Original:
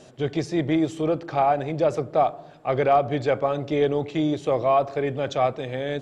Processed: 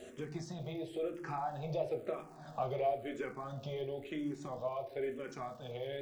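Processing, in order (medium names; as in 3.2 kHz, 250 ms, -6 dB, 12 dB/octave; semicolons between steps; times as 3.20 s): Doppler pass-by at 2.47 s, 12 m/s, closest 7 m; compression 4:1, threshold -50 dBFS, peak gain reduction 27 dB; crackle 280 per s -63 dBFS; on a send at -4 dB: reverberation RT60 0.35 s, pre-delay 5 ms; on the sum: barber-pole phaser -0.99 Hz; trim +11.5 dB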